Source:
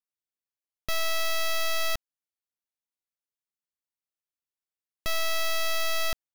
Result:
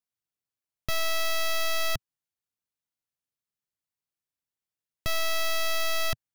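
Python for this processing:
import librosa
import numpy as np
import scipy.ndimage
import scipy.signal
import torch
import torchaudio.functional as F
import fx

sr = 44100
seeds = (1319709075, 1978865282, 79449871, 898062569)

y = fx.peak_eq(x, sr, hz=120.0, db=9.0, octaves=1.4)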